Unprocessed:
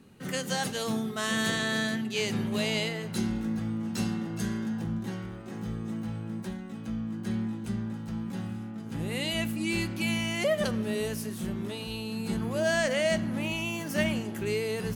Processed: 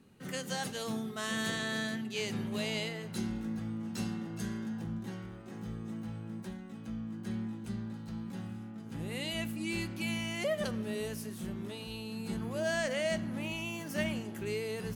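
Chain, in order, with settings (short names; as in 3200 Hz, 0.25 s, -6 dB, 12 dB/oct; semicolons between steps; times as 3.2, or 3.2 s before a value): 7.7–8.31 bell 4200 Hz +7 dB 0.29 oct; gain -6 dB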